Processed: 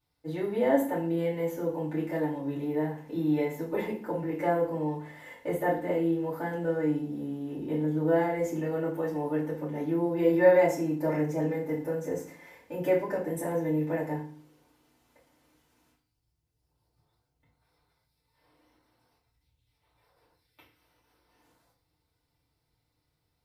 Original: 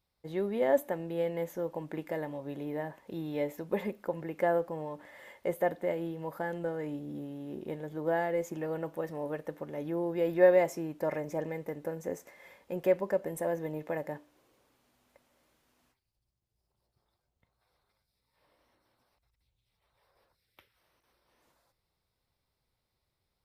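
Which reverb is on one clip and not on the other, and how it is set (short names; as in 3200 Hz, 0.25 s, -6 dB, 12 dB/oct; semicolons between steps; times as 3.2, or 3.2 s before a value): FDN reverb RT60 0.44 s, low-frequency decay 1.55×, high-frequency decay 0.9×, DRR -8.5 dB; gain -6 dB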